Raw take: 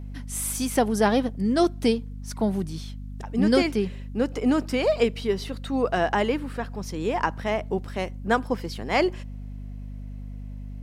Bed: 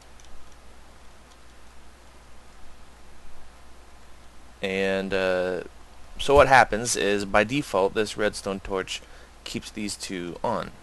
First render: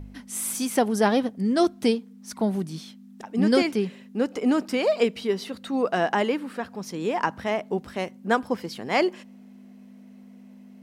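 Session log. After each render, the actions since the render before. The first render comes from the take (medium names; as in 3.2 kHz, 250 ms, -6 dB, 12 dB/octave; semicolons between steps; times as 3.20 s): de-hum 50 Hz, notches 3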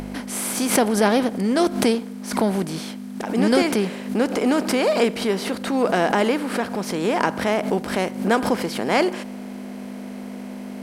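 spectral levelling over time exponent 0.6; swell ahead of each attack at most 100 dB/s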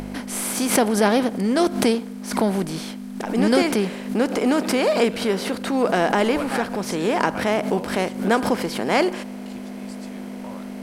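add bed -14.5 dB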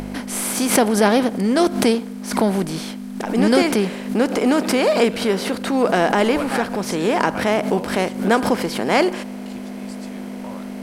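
trim +2.5 dB; peak limiter -3 dBFS, peak gain reduction 1.5 dB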